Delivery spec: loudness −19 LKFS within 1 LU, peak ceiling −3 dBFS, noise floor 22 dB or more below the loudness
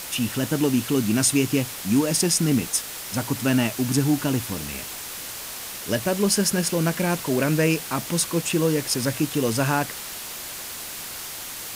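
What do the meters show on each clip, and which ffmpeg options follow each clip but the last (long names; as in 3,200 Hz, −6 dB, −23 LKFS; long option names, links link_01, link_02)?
background noise floor −35 dBFS; target noise floor −46 dBFS; integrated loudness −23.5 LKFS; sample peak −7.5 dBFS; target loudness −19.0 LKFS
→ -af "afftdn=noise_reduction=11:noise_floor=-35"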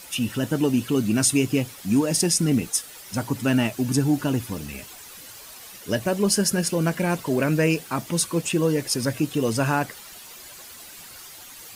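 background noise floor −43 dBFS; target noise floor −45 dBFS
→ -af "afftdn=noise_reduction=6:noise_floor=-43"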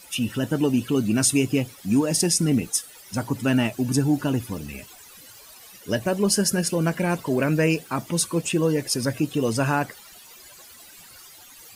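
background noise floor −47 dBFS; integrated loudness −23.5 LKFS; sample peak −8.0 dBFS; target loudness −19.0 LKFS
→ -af "volume=4.5dB"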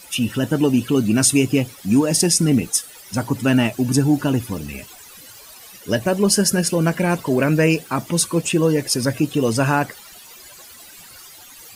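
integrated loudness −19.0 LKFS; sample peak −3.5 dBFS; background noise floor −43 dBFS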